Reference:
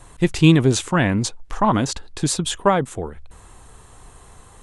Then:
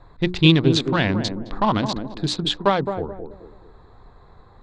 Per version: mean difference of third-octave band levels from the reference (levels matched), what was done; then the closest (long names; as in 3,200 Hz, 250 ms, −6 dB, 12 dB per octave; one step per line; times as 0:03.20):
6.0 dB: adaptive Wiener filter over 15 samples
low-pass with resonance 3,900 Hz, resonance Q 3.6
mains-hum notches 60/120/180/240/300/360 Hz
on a send: feedback echo with a band-pass in the loop 214 ms, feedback 40%, band-pass 350 Hz, level −5.5 dB
on the sum: level −2 dB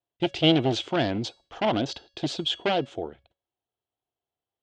7.5 dB: wavefolder on the positive side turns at −15.5 dBFS
noise gate −35 dBFS, range −37 dB
loudspeaker in its box 130–4,900 Hz, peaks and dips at 180 Hz −8 dB, 340 Hz +5 dB, 680 Hz +8 dB, 1,100 Hz −9 dB, 1,800 Hz −5 dB, 3,200 Hz +9 dB
tuned comb filter 560 Hz, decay 0.43 s, mix 50%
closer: first